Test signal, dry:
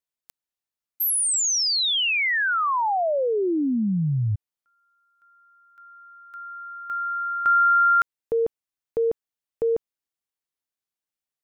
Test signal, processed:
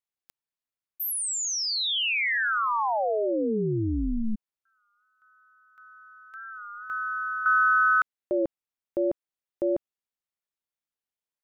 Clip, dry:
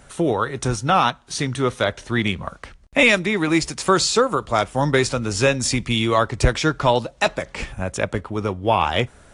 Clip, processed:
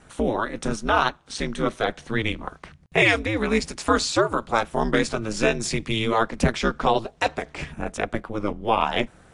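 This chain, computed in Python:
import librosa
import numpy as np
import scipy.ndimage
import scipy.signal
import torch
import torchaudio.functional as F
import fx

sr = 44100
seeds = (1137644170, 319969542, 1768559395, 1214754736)

y = fx.bass_treble(x, sr, bass_db=-1, treble_db=-4)
y = y * np.sin(2.0 * np.pi * 110.0 * np.arange(len(y)) / sr)
y = fx.record_warp(y, sr, rpm=33.33, depth_cents=100.0)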